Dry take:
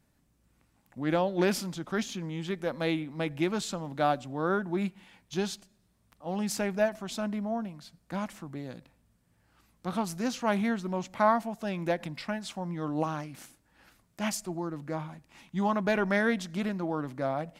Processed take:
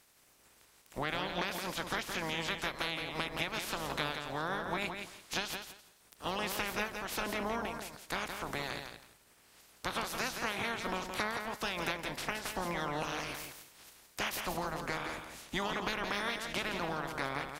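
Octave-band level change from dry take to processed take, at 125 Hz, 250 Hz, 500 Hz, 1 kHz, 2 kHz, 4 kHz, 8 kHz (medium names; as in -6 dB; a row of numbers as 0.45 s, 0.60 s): -9.0 dB, -11.5 dB, -8.5 dB, -4.0 dB, +0.5 dB, +3.5 dB, -2.0 dB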